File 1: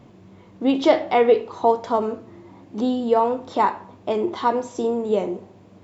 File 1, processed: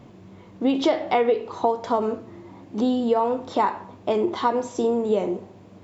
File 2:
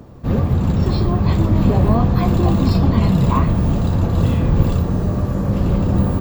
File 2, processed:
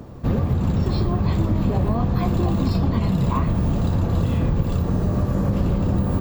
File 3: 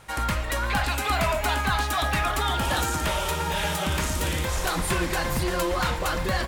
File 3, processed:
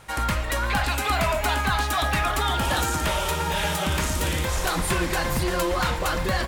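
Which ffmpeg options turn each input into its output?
-af "acompressor=threshold=-18dB:ratio=6,volume=1.5dB"

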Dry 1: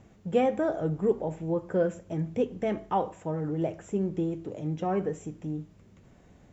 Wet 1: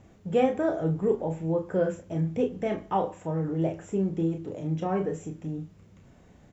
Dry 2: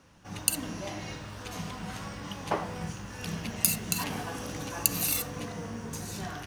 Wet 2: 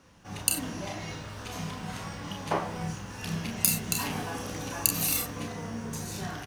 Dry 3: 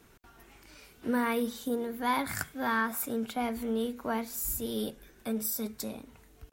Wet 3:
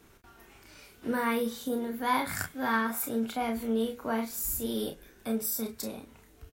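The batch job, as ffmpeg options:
-af "aecho=1:1:31|43:0.501|0.266"

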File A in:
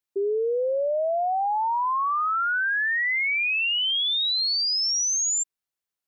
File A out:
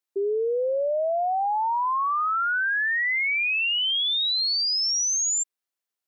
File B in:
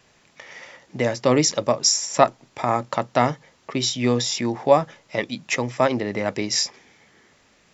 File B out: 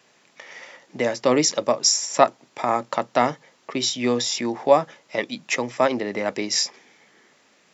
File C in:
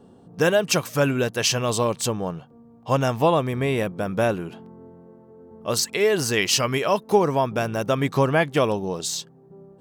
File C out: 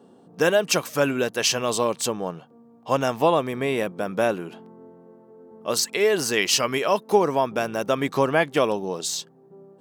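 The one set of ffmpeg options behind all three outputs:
-af "highpass=210"

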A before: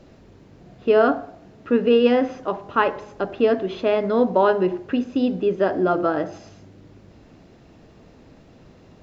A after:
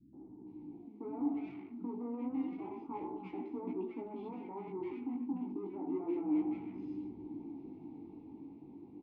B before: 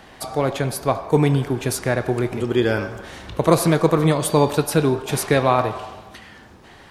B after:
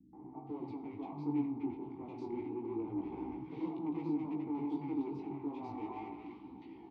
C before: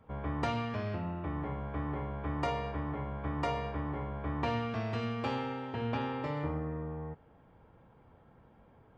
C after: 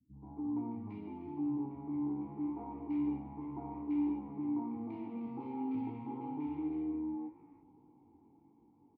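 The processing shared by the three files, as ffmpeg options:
-filter_complex "[0:a]lowpass=f=4.4k:w=0.5412,lowpass=f=4.4k:w=1.3066,equalizer=f=2.3k:w=0.6:g=-13.5,volume=17dB,asoftclip=hard,volume=-17dB,dynaudnorm=f=340:g=11:m=7dB,alimiter=limit=-13.5dB:level=0:latency=1:release=209,areverse,acompressor=threshold=-29dB:ratio=10,areverse,asoftclip=type=tanh:threshold=-33dB,flanger=delay=15.5:depth=6.1:speed=0.3,asplit=3[a][b][c];[a]bandpass=f=300:t=q:w=8,volume=0dB[d];[b]bandpass=f=870:t=q:w=8,volume=-6dB[e];[c]bandpass=f=2.24k:t=q:w=8,volume=-9dB[f];[d][e][f]amix=inputs=3:normalize=0,tiltshelf=f=840:g=3,flanger=delay=3.6:depth=9:regen=86:speed=0.79:shape=triangular,acrossover=split=210|1400[g][h][i];[h]adelay=130[j];[i]adelay=470[k];[g][j][k]amix=inputs=3:normalize=0,volume=16dB"

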